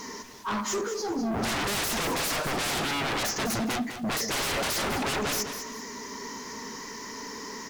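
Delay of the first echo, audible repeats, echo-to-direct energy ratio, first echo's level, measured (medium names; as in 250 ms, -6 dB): 203 ms, 2, -9.0 dB, -9.5 dB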